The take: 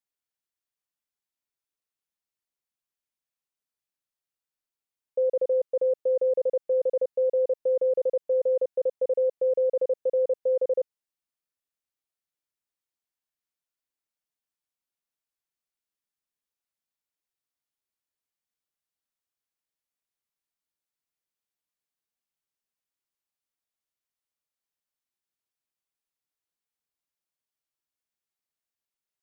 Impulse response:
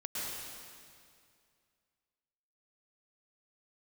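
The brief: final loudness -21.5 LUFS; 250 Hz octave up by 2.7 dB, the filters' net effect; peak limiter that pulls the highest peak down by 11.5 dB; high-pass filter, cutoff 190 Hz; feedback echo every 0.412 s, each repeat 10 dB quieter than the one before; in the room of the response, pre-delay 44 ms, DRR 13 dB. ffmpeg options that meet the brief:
-filter_complex "[0:a]highpass=190,equalizer=f=250:t=o:g=6,alimiter=level_in=5.5dB:limit=-24dB:level=0:latency=1,volume=-5.5dB,aecho=1:1:412|824|1236|1648:0.316|0.101|0.0324|0.0104,asplit=2[a][b];[1:a]atrim=start_sample=2205,adelay=44[c];[b][c]afir=irnorm=-1:irlink=0,volume=-16.5dB[d];[a][d]amix=inputs=2:normalize=0,volume=15.5dB"

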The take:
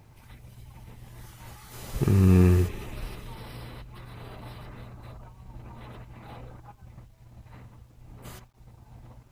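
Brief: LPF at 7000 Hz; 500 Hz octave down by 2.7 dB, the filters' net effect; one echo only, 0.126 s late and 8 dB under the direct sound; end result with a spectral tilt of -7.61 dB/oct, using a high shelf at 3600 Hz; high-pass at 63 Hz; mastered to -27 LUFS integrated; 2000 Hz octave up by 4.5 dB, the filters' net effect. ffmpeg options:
-af "highpass=63,lowpass=7k,equalizer=f=500:t=o:g=-4.5,equalizer=f=2k:t=o:g=5,highshelf=f=3.6k:g=3,aecho=1:1:126:0.398,volume=-1.5dB"

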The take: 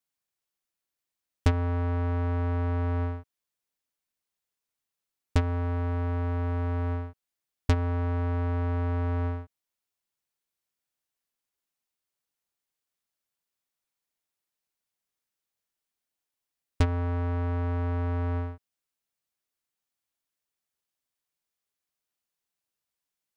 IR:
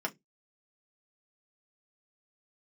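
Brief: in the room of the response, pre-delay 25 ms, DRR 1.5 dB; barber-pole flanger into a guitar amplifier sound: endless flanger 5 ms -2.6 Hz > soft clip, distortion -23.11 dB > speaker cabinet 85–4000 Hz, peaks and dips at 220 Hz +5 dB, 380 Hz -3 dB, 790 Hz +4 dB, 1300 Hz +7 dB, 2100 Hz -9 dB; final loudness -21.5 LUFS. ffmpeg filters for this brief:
-filter_complex "[0:a]asplit=2[a][b];[1:a]atrim=start_sample=2205,adelay=25[c];[b][c]afir=irnorm=-1:irlink=0,volume=-6dB[d];[a][d]amix=inputs=2:normalize=0,asplit=2[e][f];[f]adelay=5,afreqshift=-2.6[g];[e][g]amix=inputs=2:normalize=1,asoftclip=threshold=-19.5dB,highpass=85,equalizer=f=220:t=q:w=4:g=5,equalizer=f=380:t=q:w=4:g=-3,equalizer=f=790:t=q:w=4:g=4,equalizer=f=1.3k:t=q:w=4:g=7,equalizer=f=2.1k:t=q:w=4:g=-9,lowpass=f=4k:w=0.5412,lowpass=f=4k:w=1.3066,volume=11dB"

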